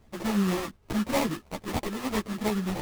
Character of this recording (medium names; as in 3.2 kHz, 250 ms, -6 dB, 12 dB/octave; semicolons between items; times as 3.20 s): aliases and images of a low sample rate 1.5 kHz, jitter 20%; a shimmering, thickened sound